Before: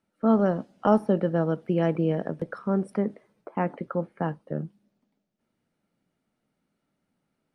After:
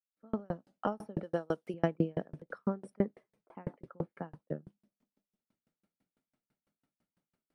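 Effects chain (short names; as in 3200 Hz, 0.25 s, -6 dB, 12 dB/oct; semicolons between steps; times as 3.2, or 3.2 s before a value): opening faded in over 1.00 s; 1.23–1.74 tone controls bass -10 dB, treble +13 dB; dB-ramp tremolo decaying 6 Hz, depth 40 dB; gain +1 dB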